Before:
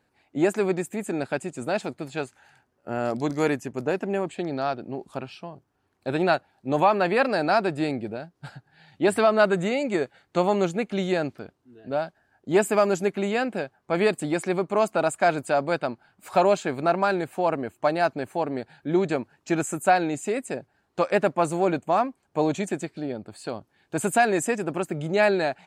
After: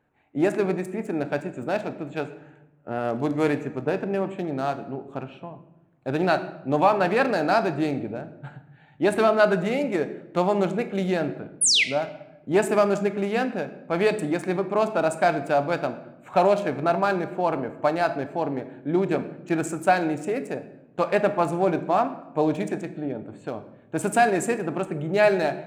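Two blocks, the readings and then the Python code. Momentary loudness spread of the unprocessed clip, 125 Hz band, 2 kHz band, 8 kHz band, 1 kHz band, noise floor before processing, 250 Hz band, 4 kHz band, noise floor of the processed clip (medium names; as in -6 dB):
14 LU, +1.5 dB, +0.5 dB, +5.5 dB, +0.5 dB, -72 dBFS, +1.0 dB, +6.0 dB, -54 dBFS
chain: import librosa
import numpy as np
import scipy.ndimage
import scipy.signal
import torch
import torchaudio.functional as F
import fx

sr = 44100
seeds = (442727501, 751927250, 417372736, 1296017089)

y = fx.wiener(x, sr, points=9)
y = fx.spec_paint(y, sr, seeds[0], shape='fall', start_s=11.61, length_s=0.23, low_hz=1900.0, high_hz=11000.0, level_db=-19.0)
y = fx.room_shoebox(y, sr, seeds[1], volume_m3=310.0, walls='mixed', distance_m=0.41)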